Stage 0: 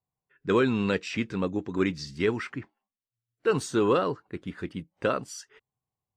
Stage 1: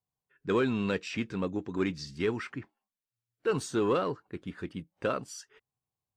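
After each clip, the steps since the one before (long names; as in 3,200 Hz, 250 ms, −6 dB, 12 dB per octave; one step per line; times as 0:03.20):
notch filter 2,000 Hz, Q 25
in parallel at −10 dB: hard clipping −25 dBFS, distortion −8 dB
on the sum: level −5.5 dB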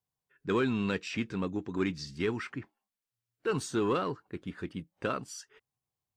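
dynamic equaliser 550 Hz, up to −5 dB, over −42 dBFS, Q 2.1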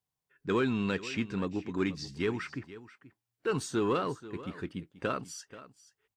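single-tap delay 483 ms −16.5 dB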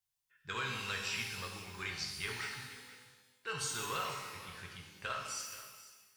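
guitar amp tone stack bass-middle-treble 10-0-10
reverb with rising layers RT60 1.2 s, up +12 semitones, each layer −8 dB, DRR 0 dB
level +1.5 dB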